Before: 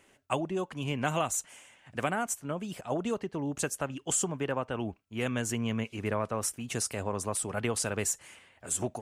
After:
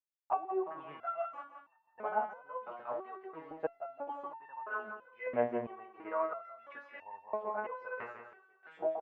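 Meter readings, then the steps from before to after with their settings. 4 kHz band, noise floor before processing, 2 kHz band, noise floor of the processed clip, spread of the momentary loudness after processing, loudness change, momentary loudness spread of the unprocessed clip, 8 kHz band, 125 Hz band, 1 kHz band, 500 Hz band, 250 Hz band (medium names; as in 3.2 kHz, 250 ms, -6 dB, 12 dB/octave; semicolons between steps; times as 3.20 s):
under -25 dB, -64 dBFS, -6.5 dB, -73 dBFS, 14 LU, -7.0 dB, 7 LU, under -40 dB, -24.5 dB, -1.0 dB, -3.5 dB, -13.5 dB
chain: tone controls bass -11 dB, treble -15 dB; waveshaping leveller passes 1; small samples zeroed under -45 dBFS; LFO band-pass saw up 0.57 Hz 660–2000 Hz; tape spacing loss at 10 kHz 45 dB; on a send: feedback delay 171 ms, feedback 45%, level -9 dB; on the sum: resonator arpeggio 3 Hz 120–900 Hz; trim +17 dB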